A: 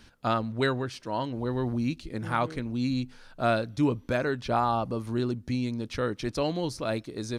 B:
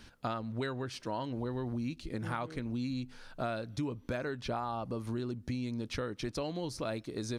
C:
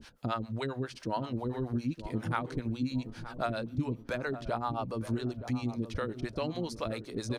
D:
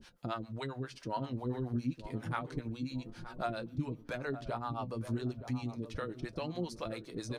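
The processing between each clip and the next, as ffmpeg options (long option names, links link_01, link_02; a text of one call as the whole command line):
ffmpeg -i in.wav -af "acompressor=threshold=-33dB:ratio=6" out.wav
ffmpeg -i in.wav -filter_complex "[0:a]acrossover=split=460[link_01][link_02];[link_01]aeval=exprs='val(0)*(1-1/2+1/2*cos(2*PI*7.4*n/s))':channel_layout=same[link_03];[link_02]aeval=exprs='val(0)*(1-1/2-1/2*cos(2*PI*7.4*n/s))':channel_layout=same[link_04];[link_03][link_04]amix=inputs=2:normalize=0,asplit=2[link_05][link_06];[link_06]adelay=921,lowpass=frequency=1100:poles=1,volume=-11dB,asplit=2[link_07][link_08];[link_08]adelay=921,lowpass=frequency=1100:poles=1,volume=0.42,asplit=2[link_09][link_10];[link_10]adelay=921,lowpass=frequency=1100:poles=1,volume=0.42,asplit=2[link_11][link_12];[link_12]adelay=921,lowpass=frequency=1100:poles=1,volume=0.42[link_13];[link_07][link_09][link_11][link_13]amix=inputs=4:normalize=0[link_14];[link_05][link_14]amix=inputs=2:normalize=0,volume=7dB" out.wav
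ffmpeg -i in.wav -af "flanger=delay=5.4:depth=2.8:regen=56:speed=0.3:shape=triangular" out.wav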